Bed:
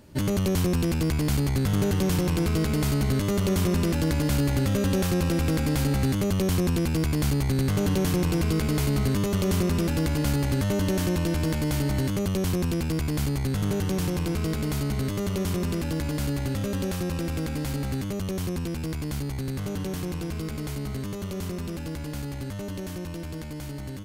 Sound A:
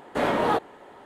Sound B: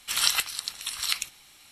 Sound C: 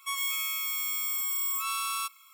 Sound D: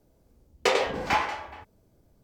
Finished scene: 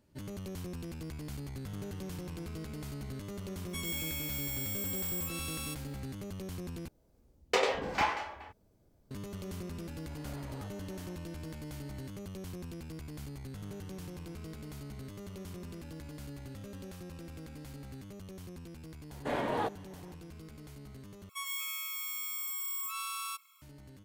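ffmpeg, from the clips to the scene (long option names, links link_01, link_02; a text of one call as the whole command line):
ffmpeg -i bed.wav -i cue0.wav -i cue1.wav -i cue2.wav -i cue3.wav -filter_complex "[3:a]asplit=2[link_01][link_02];[1:a]asplit=2[link_03][link_04];[0:a]volume=-17.5dB[link_05];[link_01]equalizer=frequency=1200:width_type=o:width=0.67:gain=-13[link_06];[link_03]acompressor=threshold=-37dB:ratio=6:attack=3.2:release=140:knee=1:detection=peak[link_07];[link_04]bandreject=frequency=1300:width=9.3[link_08];[link_02]highpass=260[link_09];[link_05]asplit=3[link_10][link_11][link_12];[link_10]atrim=end=6.884[link_13];[4:a]atrim=end=2.23,asetpts=PTS-STARTPTS,volume=-5dB[link_14];[link_11]atrim=start=9.106:end=21.294[link_15];[link_09]atrim=end=2.33,asetpts=PTS-STARTPTS,volume=-7dB[link_16];[link_12]atrim=start=23.616[link_17];[link_06]atrim=end=2.33,asetpts=PTS-STARTPTS,volume=-6.5dB,afade=type=in:duration=0.004:curve=hsin,afade=type=out:start_time=2.326:duration=0.004:curve=hsin,adelay=3670[link_18];[link_07]atrim=end=1.05,asetpts=PTS-STARTPTS,volume=-11.5dB,afade=type=in:duration=0.004:curve=hsin,afade=type=out:start_time=1.046:duration=0.004:curve=hsin,adelay=445410S[link_19];[link_08]atrim=end=1.05,asetpts=PTS-STARTPTS,volume=-9.5dB,afade=type=in:duration=0.004:curve=hsin,afade=type=out:start_time=1.046:duration=0.004:curve=hsin,adelay=19100[link_20];[link_13][link_14]acrossfade=duration=0.004:curve1=hsin:curve2=hsin[link_21];[link_21][link_15]acrossfade=duration=0.004:curve1=hsin:curve2=hsin[link_22];[link_22][link_16]acrossfade=duration=0.004:curve1=hsin:curve2=hsin[link_23];[link_23][link_17]acrossfade=duration=0.004:curve1=hsin:curve2=hsin[link_24];[link_24][link_18][link_19][link_20]amix=inputs=4:normalize=0" out.wav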